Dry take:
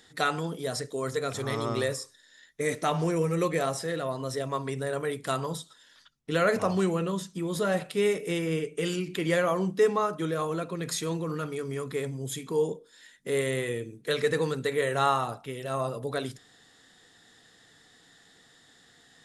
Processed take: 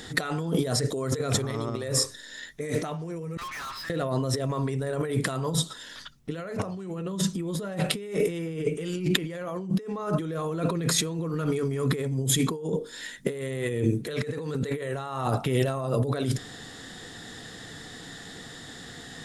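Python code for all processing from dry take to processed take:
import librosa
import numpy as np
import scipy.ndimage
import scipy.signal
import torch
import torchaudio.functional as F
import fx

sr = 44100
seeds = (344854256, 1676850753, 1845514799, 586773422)

y = fx.chain(x, sr, fx.law_mismatch(coded='A'),
    fx.brickwall_bandpass(low_hz=900.0, high_hz=5300.0),
    fx.tube_stage(drive_db=50.0, bias=0.25), at=(3.37, 3.9))
y = fx.low_shelf(y, sr, hz=400.0, db=8.0)
y = fx.over_compress(y, sr, threshold_db=-35.0, ratio=-1.0)
y = y * librosa.db_to_amplitude(5.5)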